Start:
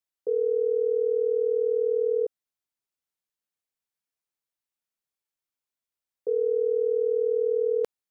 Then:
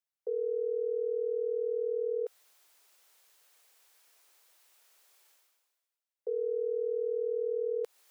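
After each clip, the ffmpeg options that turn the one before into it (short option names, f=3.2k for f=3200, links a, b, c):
-af "areverse,acompressor=mode=upward:threshold=-37dB:ratio=2.5,areverse,highpass=f=410:w=0.5412,highpass=f=410:w=1.3066,alimiter=limit=-22dB:level=0:latency=1:release=141,volume=-4dB"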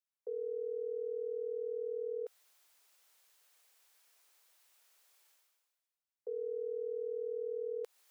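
-af "lowshelf=f=430:g=-5.5,volume=-4dB"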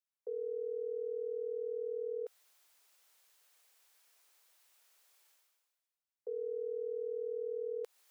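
-af anull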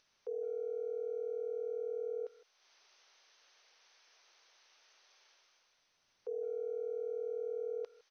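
-filter_complex "[0:a]asplit=2[a][b];[b]adelay=160,highpass=300,lowpass=3.4k,asoftclip=type=hard:threshold=-40dB,volume=-19dB[c];[a][c]amix=inputs=2:normalize=0,acompressor=mode=upward:threshold=-53dB:ratio=2.5" -ar 24000 -c:a mp2 -b:a 48k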